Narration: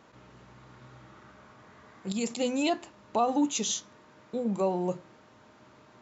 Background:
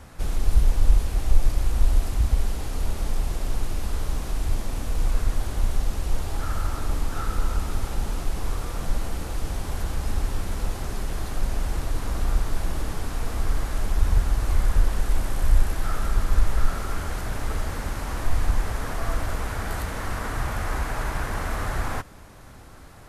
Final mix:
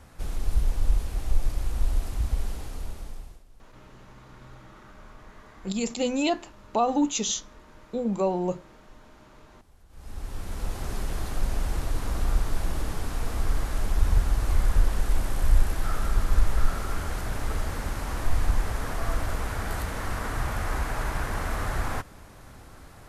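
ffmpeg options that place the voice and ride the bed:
ffmpeg -i stem1.wav -i stem2.wav -filter_complex "[0:a]adelay=3600,volume=2.5dB[link_01];[1:a]volume=21.5dB,afade=type=out:start_time=2.52:duration=0.92:silence=0.0707946,afade=type=in:start_time=9.89:duration=1.04:silence=0.0446684[link_02];[link_01][link_02]amix=inputs=2:normalize=0" out.wav

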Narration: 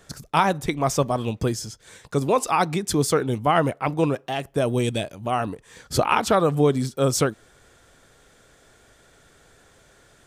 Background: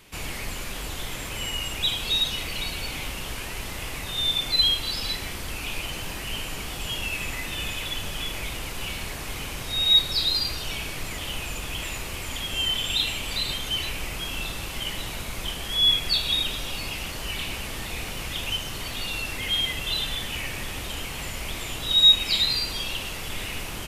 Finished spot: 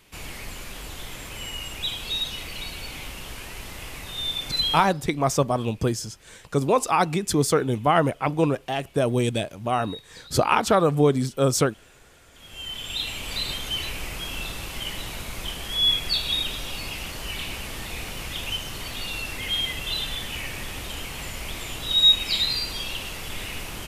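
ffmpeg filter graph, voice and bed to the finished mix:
ffmpeg -i stem1.wav -i stem2.wav -filter_complex "[0:a]adelay=4400,volume=0dB[link_01];[1:a]volume=19.5dB,afade=type=out:start_time=4.73:duration=0.2:silence=0.0944061,afade=type=in:start_time=12.32:duration=1.06:silence=0.0668344[link_02];[link_01][link_02]amix=inputs=2:normalize=0" out.wav

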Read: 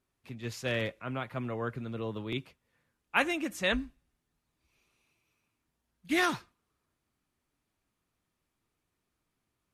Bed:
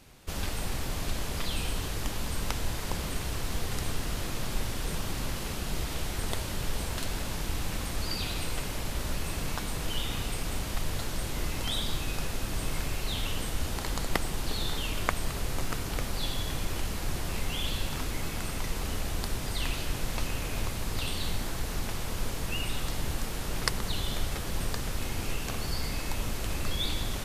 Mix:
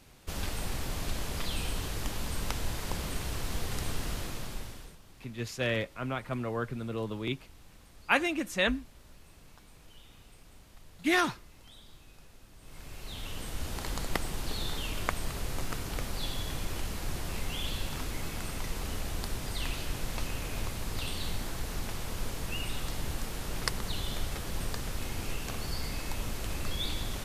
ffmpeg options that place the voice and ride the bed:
ffmpeg -i stem1.wav -i stem2.wav -filter_complex "[0:a]adelay=4950,volume=1.5dB[link_01];[1:a]volume=17.5dB,afade=type=out:start_time=4.09:duration=0.88:silence=0.0944061,afade=type=in:start_time=12.6:duration=1.27:silence=0.105925[link_02];[link_01][link_02]amix=inputs=2:normalize=0" out.wav

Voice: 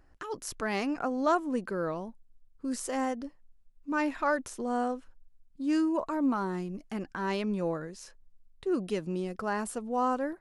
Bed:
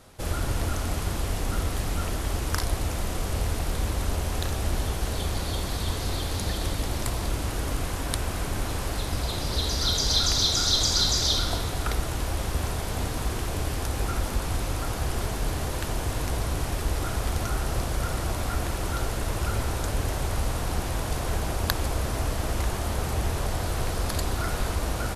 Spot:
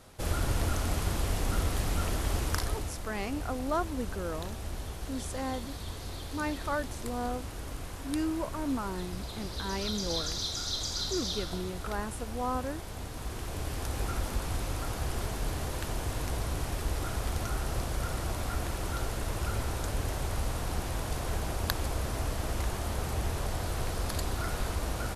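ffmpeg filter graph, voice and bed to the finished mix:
ffmpeg -i stem1.wav -i stem2.wav -filter_complex "[0:a]adelay=2450,volume=-4.5dB[link_01];[1:a]volume=4dB,afade=type=out:start_time=2.4:duration=0.57:silence=0.354813,afade=type=in:start_time=13.08:duration=0.88:silence=0.501187[link_02];[link_01][link_02]amix=inputs=2:normalize=0" out.wav

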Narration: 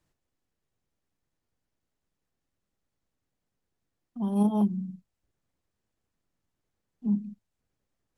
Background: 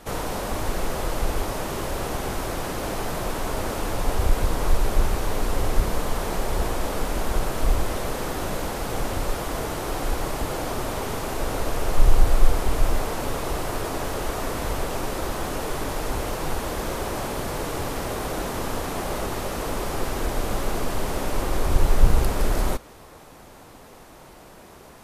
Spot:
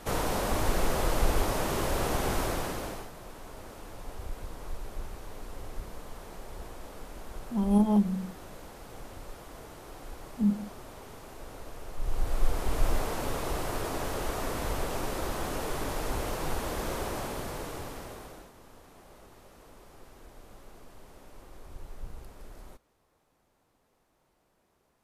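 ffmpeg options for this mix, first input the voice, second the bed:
ffmpeg -i stem1.wav -i stem2.wav -filter_complex "[0:a]adelay=3350,volume=1dB[link_01];[1:a]volume=12dB,afade=type=out:start_time=2.4:duration=0.7:silence=0.141254,afade=type=in:start_time=11.99:duration=0.92:silence=0.223872,afade=type=out:start_time=16.98:duration=1.54:silence=0.0944061[link_02];[link_01][link_02]amix=inputs=2:normalize=0" out.wav

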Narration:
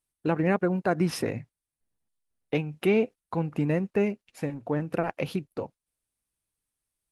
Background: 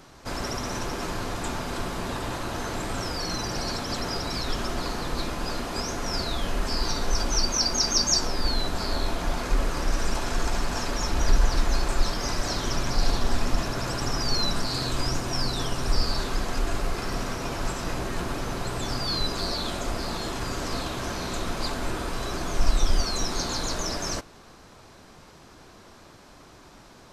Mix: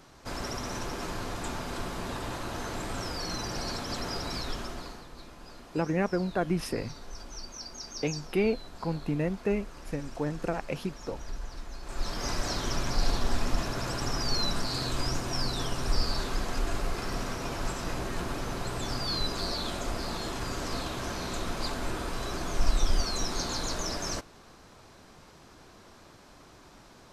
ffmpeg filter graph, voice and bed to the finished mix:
ffmpeg -i stem1.wav -i stem2.wav -filter_complex "[0:a]adelay=5500,volume=-3.5dB[link_01];[1:a]volume=10dB,afade=type=out:start_time=4.34:duration=0.73:silence=0.211349,afade=type=in:start_time=11.82:duration=0.46:silence=0.188365[link_02];[link_01][link_02]amix=inputs=2:normalize=0" out.wav

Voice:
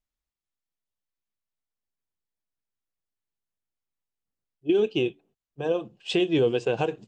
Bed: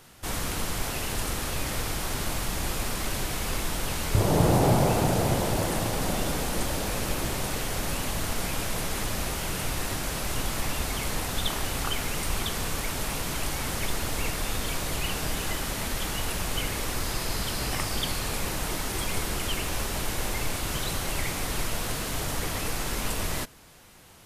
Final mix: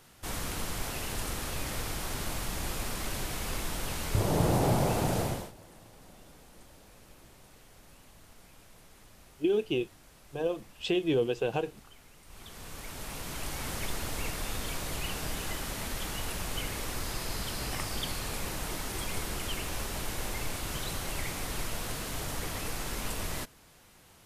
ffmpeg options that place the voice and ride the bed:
ffmpeg -i stem1.wav -i stem2.wav -filter_complex "[0:a]adelay=4750,volume=-5dB[link_01];[1:a]volume=15.5dB,afade=type=out:start_time=5.2:duration=0.32:silence=0.0891251,afade=type=in:start_time=12.25:duration=1.44:silence=0.0944061[link_02];[link_01][link_02]amix=inputs=2:normalize=0" out.wav

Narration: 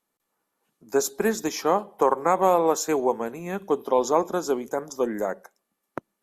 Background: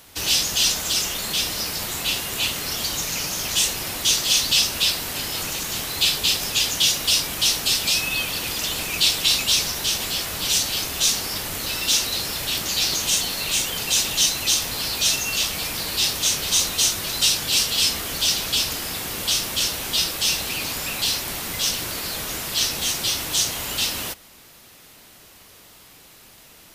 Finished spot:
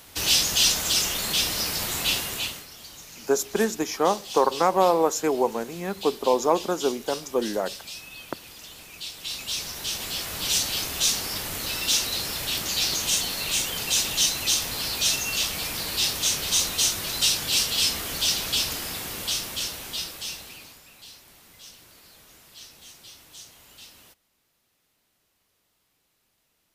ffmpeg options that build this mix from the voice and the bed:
ffmpeg -i stem1.wav -i stem2.wav -filter_complex "[0:a]adelay=2350,volume=0dB[link_01];[1:a]volume=14.5dB,afade=type=out:start_time=2.14:duration=0.53:silence=0.133352,afade=type=in:start_time=9.13:duration=1.43:silence=0.177828,afade=type=out:start_time=18.71:duration=2.11:silence=0.0944061[link_02];[link_01][link_02]amix=inputs=2:normalize=0" out.wav

